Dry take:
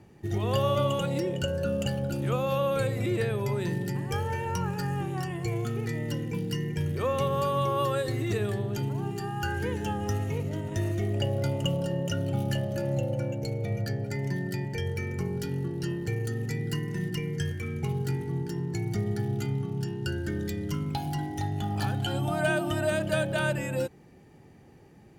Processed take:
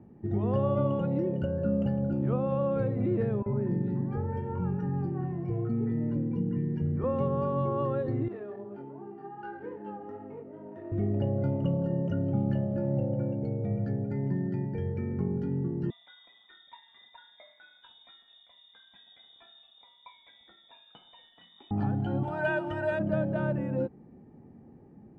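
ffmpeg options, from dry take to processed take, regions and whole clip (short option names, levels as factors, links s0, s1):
-filter_complex "[0:a]asettb=1/sr,asplit=3[s0][s1][s2];[s0]atrim=end=3.424[s3];[s1]atrim=start=3.42:end=7.04,asetpts=PTS-STARTPTS,afade=t=in:d=0.004:c=qsin,afade=t=out:st=3.616:d=0.004:c=qsin,lowpass=f=3300:p=1,acrossover=split=770|2600[s4][s5][s6];[s4]adelay=40[s7];[s6]adelay=250[s8];[s7][s5][s8]amix=inputs=3:normalize=0,atrim=end_sample=159642[s9];[s2]atrim=start=7.036[s10];[s3][s9]acrossfade=d=0.004:c1=hsin:c2=qsin[s11];[s11][s10]acrossfade=d=0.004:c1=qsin:c2=hsin,asettb=1/sr,asplit=3[s12][s13][s14];[s12]atrim=end=8.284[s15];[s13]atrim=start=8.28:end=10.92,asetpts=PTS-STARTPTS,afade=t=in:d=0.004:c=qsin,afade=t=out:st=2.636:d=0.004:c=qsin,flanger=delay=19.5:depth=3.2:speed=2.5,adynamicsmooth=sensitivity=6.5:basefreq=1700,highpass=430[s16];[s14]atrim=start=10.916[s17];[s15][s16]acrossfade=d=0.004:c1=hsin:c2=qsin[s18];[s18][s17]acrossfade=d=0.004:c1=qsin:c2=hsin,asettb=1/sr,asplit=3[s19][s20][s21];[s19]atrim=end=15.904[s22];[s20]atrim=start=15.9:end=21.71,asetpts=PTS-STARTPTS,afade=t=in:d=0.004:c=qsin,afade=t=out:st=5.806:d=0.004:c=qsin,flanger=delay=4.8:depth=2.1:regen=-39:speed=2:shape=sinusoidal,lowpass=f=3200:t=q:w=0.5098,lowpass=f=3200:t=q:w=0.6013,lowpass=f=3200:t=q:w=0.9,lowpass=f=3200:t=q:w=2.563,afreqshift=-3800[s23];[s21]atrim=start=21.706[s24];[s22][s23]acrossfade=d=0.004:c1=hsin:c2=qsin[s25];[s25][s24]acrossfade=d=0.004:c1=qsin:c2=hsin,asettb=1/sr,asplit=3[s26][s27][s28];[s26]atrim=end=22.234[s29];[s27]atrim=start=22.23:end=22.99,asetpts=PTS-STARTPTS,afade=t=in:d=0.004:c=qsin,afade=t=out:st=0.756:d=0.004:c=qsin,tiltshelf=f=660:g=-9,aecho=1:1:2.1:0.81,atrim=end_sample=33516[s30];[s28]atrim=start=22.986[s31];[s29][s30]acrossfade=d=0.004:c1=hsin:c2=qsin[s32];[s32][s31]acrossfade=d=0.004:c1=qsin:c2=hsin,lowpass=1000,equalizer=f=230:w=2.2:g=9.5,volume=0.794"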